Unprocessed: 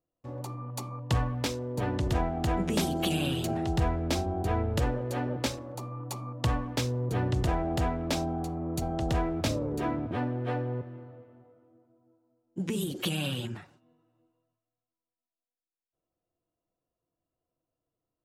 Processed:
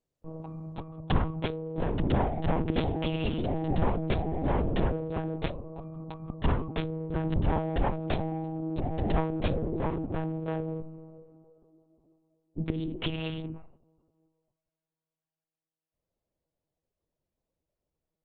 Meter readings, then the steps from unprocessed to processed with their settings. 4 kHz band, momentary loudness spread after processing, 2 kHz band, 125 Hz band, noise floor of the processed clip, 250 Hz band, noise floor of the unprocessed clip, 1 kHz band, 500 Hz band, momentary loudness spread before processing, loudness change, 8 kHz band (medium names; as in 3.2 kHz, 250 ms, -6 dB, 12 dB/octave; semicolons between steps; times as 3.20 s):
-5.5 dB, 13 LU, -2.5 dB, -1.0 dB, under -85 dBFS, 0.0 dB, under -85 dBFS, -1.0 dB, +0.5 dB, 10 LU, -0.5 dB, under -35 dB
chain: local Wiener filter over 25 samples; distance through air 98 m; monotone LPC vocoder at 8 kHz 160 Hz; trim +2 dB; Opus 32 kbps 48 kHz